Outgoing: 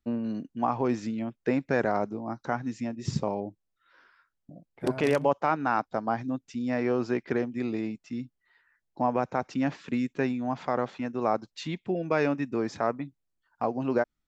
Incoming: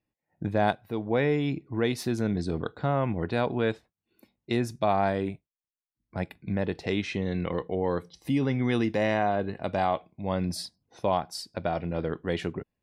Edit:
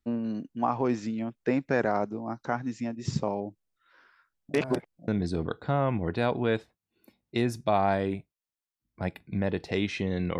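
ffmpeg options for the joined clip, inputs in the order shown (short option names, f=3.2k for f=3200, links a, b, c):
-filter_complex "[0:a]apad=whole_dur=10.39,atrim=end=10.39,asplit=2[a][b];[a]atrim=end=4.542[c];[b]atrim=start=4.538:end=5.082,asetpts=PTS-STARTPTS,areverse[d];[1:a]atrim=start=2.228:end=7.54[e];[c][d]acrossfade=d=0.004:c1=hsin:c2=hsin[f];[f][e]acrossfade=d=0.004:c1=hsin:c2=hsin"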